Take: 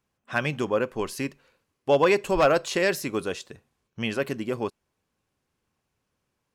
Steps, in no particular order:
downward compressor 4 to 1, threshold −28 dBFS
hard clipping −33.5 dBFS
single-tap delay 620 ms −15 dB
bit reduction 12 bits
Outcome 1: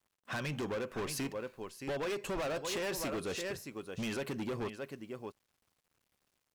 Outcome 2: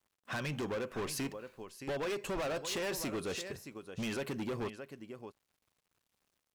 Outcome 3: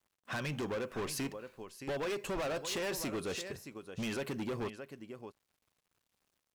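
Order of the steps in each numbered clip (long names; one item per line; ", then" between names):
single-tap delay, then bit reduction, then downward compressor, then hard clipping
bit reduction, then downward compressor, then single-tap delay, then hard clipping
downward compressor, then bit reduction, then single-tap delay, then hard clipping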